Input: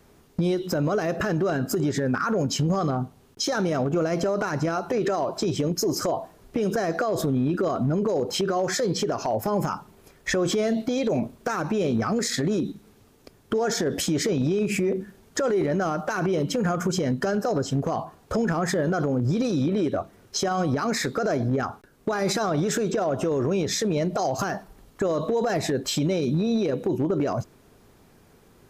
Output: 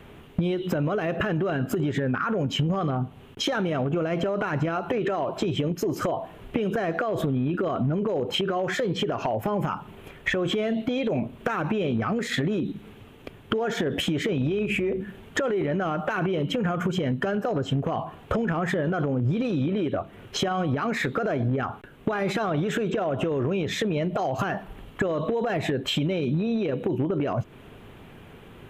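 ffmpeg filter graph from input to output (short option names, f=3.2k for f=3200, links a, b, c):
-filter_complex "[0:a]asettb=1/sr,asplit=3[a][b][c];[a]atrim=end=14.404[d];[b]atrim=start=14.4:end=15,asetpts=PTS-STARTPTS,afade=t=in:d=0.004:c=qsin,afade=t=out:st=0.596:d=0.004:c=qsin,equalizer=f=180:w=6.4:g=-5.5,aeval=exprs='val(0)+0.00501*(sin(2*PI*60*n/s)+sin(2*PI*2*60*n/s)/2+sin(2*PI*3*60*n/s)/3+sin(2*PI*4*60*n/s)/4+sin(2*PI*5*60*n/s)/5)':c=same[e];[c]atrim=start=14.996[f];[d][e]acrossfade=d=0.004:c1=hsin:c2=qsin[g];[g][f]acrossfade=d=0.004:c1=qsin:c2=hsin,highshelf=f=3.9k:t=q:w=3:g=-9,acompressor=threshold=-32dB:ratio=6,equalizer=f=120:w=1.5:g=3,volume=8dB"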